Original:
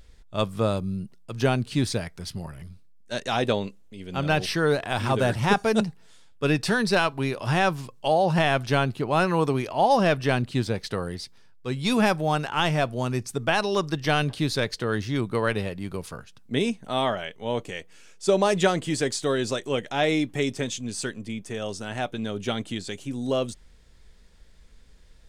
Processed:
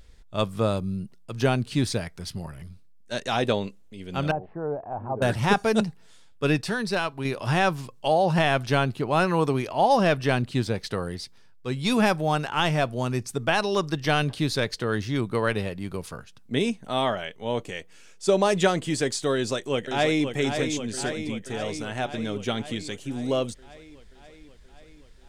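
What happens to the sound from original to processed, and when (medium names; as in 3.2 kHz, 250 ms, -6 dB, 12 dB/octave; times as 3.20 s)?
4.31–5.22 s: four-pole ladder low-pass 930 Hz, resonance 50%
6.61–7.25 s: gain -4.5 dB
19.34–20.29 s: echo throw 530 ms, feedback 70%, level -7 dB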